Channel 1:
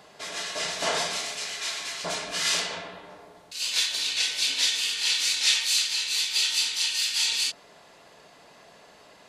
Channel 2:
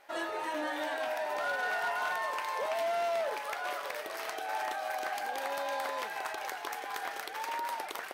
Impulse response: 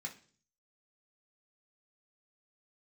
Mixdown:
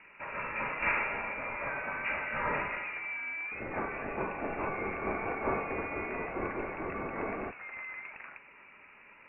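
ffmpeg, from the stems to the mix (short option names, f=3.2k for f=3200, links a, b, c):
-filter_complex "[0:a]lowshelf=f=440:g=-9.5,volume=1.5dB,asplit=2[a][b];[b]volume=-10.5dB[c];[1:a]adelay=250,volume=-7dB[d];[2:a]atrim=start_sample=2205[e];[c][e]afir=irnorm=-1:irlink=0[f];[a][d][f]amix=inputs=3:normalize=0,lowpass=f=2.6k:t=q:w=0.5098,lowpass=f=2.6k:t=q:w=0.6013,lowpass=f=2.6k:t=q:w=0.9,lowpass=f=2.6k:t=q:w=2.563,afreqshift=-3000"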